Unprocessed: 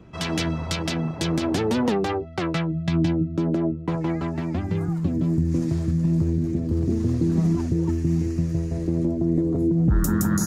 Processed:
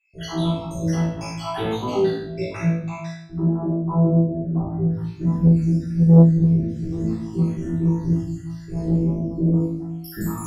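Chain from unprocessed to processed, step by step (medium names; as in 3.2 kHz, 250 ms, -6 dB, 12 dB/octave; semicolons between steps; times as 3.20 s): random holes in the spectrogram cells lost 77%; 3.09–4.90 s: steep low-pass 1.2 kHz 36 dB/octave; on a send: flutter echo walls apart 3.1 m, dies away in 0.44 s; on the sum: simulated room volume 160 m³, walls mixed, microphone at 3.6 m; transformer saturation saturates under 230 Hz; trim -11.5 dB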